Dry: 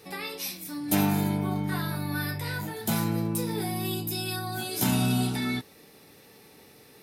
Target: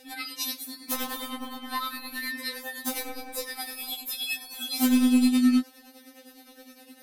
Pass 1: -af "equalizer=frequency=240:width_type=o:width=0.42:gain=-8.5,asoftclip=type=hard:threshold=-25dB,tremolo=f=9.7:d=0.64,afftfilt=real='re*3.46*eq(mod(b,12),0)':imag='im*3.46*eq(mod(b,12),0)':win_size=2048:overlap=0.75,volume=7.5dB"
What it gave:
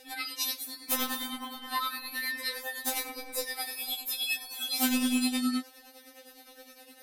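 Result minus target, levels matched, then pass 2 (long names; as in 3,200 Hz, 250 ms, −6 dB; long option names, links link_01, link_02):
250 Hz band −5.0 dB
-af "equalizer=frequency=240:width_type=o:width=0.42:gain=2.5,asoftclip=type=hard:threshold=-25dB,tremolo=f=9.7:d=0.64,afftfilt=real='re*3.46*eq(mod(b,12),0)':imag='im*3.46*eq(mod(b,12),0)':win_size=2048:overlap=0.75,volume=7.5dB"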